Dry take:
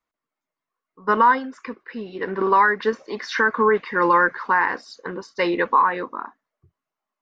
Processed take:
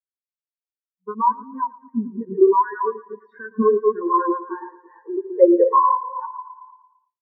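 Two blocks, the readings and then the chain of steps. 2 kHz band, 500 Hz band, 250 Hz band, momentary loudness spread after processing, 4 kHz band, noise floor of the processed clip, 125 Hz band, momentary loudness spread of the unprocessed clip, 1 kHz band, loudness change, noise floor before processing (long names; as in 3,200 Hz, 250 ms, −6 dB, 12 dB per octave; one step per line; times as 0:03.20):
−18.0 dB, +4.5 dB, +4.5 dB, 18 LU, below −40 dB, below −85 dBFS, can't be measured, 17 LU, −1.0 dB, 0.0 dB, below −85 dBFS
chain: delay that plays each chunk backwards 209 ms, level −4.5 dB
dynamic equaliser 670 Hz, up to −5 dB, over −35 dBFS, Q 3
downward compressor 2.5 to 1, threshold −29 dBFS, peak gain reduction 12 dB
on a send: feedback echo with a high-pass in the loop 113 ms, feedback 84%, high-pass 170 Hz, level −5.5 dB
on the sum: automatic gain control gain up to 11 dB
high-pass filter sweep 140 Hz → 780 Hz, 0:03.31–0:06.65
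every bin expanded away from the loudest bin 4 to 1
level −1 dB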